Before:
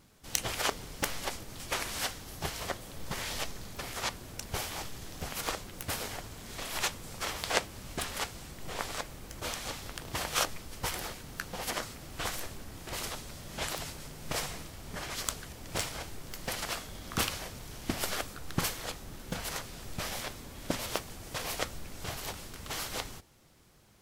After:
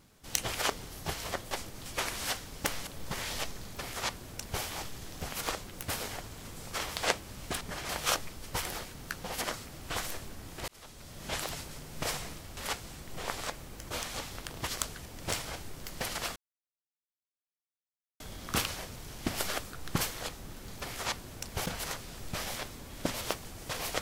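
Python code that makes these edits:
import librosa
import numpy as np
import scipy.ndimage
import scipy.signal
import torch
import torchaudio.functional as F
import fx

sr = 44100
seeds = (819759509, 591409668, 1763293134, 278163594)

y = fx.edit(x, sr, fx.swap(start_s=0.9, length_s=0.35, other_s=2.26, other_length_s=0.61),
    fx.duplicate(start_s=3.65, length_s=0.98, to_s=19.31),
    fx.cut(start_s=6.45, length_s=0.47),
    fx.swap(start_s=8.08, length_s=2.1, other_s=14.86, other_length_s=0.28),
    fx.fade_in_span(start_s=12.97, length_s=0.57),
    fx.insert_silence(at_s=16.83, length_s=1.84), tone=tone)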